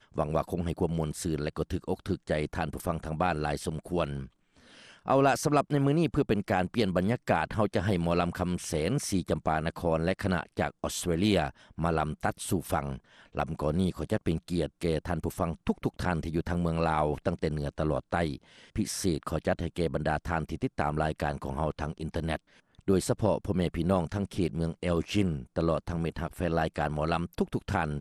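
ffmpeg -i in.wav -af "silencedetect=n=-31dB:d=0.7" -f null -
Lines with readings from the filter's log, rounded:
silence_start: 4.23
silence_end: 5.08 | silence_duration: 0.85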